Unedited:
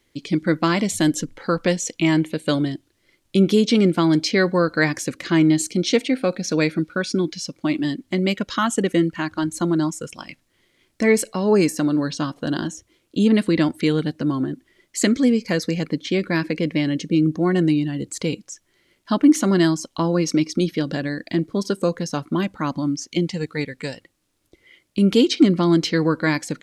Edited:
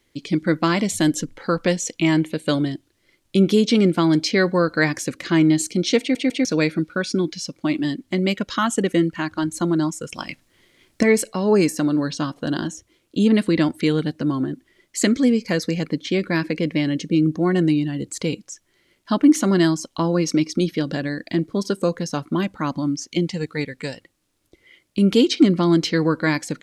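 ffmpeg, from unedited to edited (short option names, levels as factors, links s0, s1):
-filter_complex "[0:a]asplit=6[s0][s1][s2][s3][s4][s5];[s0]atrim=end=6.152[s6];[s1]atrim=start=5.998:end=6.152[s7];[s2]atrim=start=5.998:end=6.152[s8];[s3]atrim=start=6.448:end=10.122[s9];[s4]atrim=start=10.118:end=11.032,asetpts=PTS-STARTPTS,volume=1.88[s10];[s5]atrim=start=11.028[s11];[s6][s7]acrossfade=d=0.004:c1=hsin:c2=hsin[s12];[s12][s8]acrossfade=d=0.004:c1=hsin:c2=hsin[s13];[s13][s9]acrossfade=d=0.004:c1=hsin:c2=hsin[s14];[s14][s10]acrossfade=d=0.004:c1=hsin:c2=hsin[s15];[s15][s11]acrossfade=d=0.004:c1=hsin:c2=hsin"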